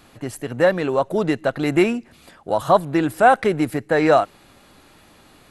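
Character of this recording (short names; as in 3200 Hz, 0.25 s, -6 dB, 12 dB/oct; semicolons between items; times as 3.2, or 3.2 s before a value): noise floor -52 dBFS; spectral tilt -5.0 dB/oct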